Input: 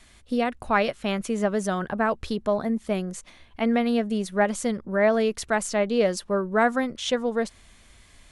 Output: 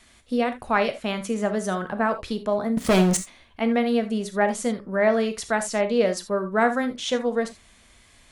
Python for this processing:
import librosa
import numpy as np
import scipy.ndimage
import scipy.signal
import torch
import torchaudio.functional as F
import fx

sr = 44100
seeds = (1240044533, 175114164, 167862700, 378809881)

y = fx.low_shelf(x, sr, hz=110.0, db=-7.0)
y = fx.leveller(y, sr, passes=5, at=(2.77, 3.17))
y = fx.rev_gated(y, sr, seeds[0], gate_ms=100, shape='flat', drr_db=8.0)